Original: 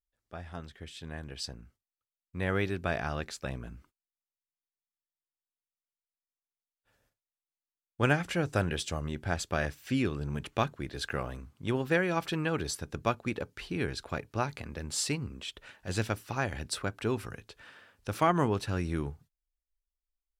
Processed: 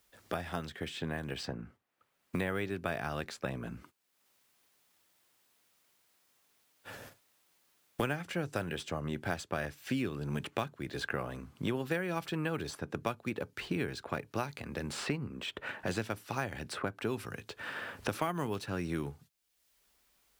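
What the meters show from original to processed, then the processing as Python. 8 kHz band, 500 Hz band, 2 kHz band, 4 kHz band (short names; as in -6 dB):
-8.0 dB, -3.5 dB, -3.0 dB, -3.5 dB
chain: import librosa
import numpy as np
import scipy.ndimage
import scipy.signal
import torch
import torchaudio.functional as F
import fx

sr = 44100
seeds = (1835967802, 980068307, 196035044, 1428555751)

p1 = scipy.signal.sosfilt(scipy.signal.butter(2, 110.0, 'highpass', fs=sr, output='sos'), x)
p2 = fx.sample_hold(p1, sr, seeds[0], rate_hz=11000.0, jitter_pct=0)
p3 = p1 + F.gain(torch.from_numpy(p2), -11.5).numpy()
p4 = fx.band_squash(p3, sr, depth_pct=100)
y = F.gain(torch.from_numpy(p4), -5.5).numpy()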